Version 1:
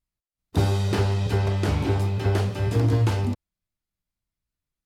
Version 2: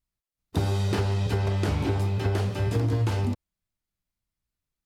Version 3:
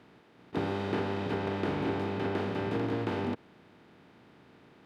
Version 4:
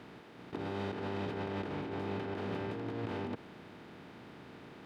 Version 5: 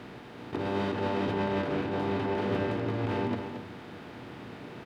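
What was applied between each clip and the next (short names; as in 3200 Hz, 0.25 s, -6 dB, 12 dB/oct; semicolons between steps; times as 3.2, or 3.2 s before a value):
compressor, threshold -21 dBFS, peak gain reduction 6 dB
per-bin compression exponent 0.4; three-band isolator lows -23 dB, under 150 Hz, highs -20 dB, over 3400 Hz; gain -5.5 dB
negative-ratio compressor -38 dBFS, ratio -1
echo 0.225 s -8 dB; reverb RT60 0.50 s, pre-delay 8 ms, DRR 7 dB; gain +6 dB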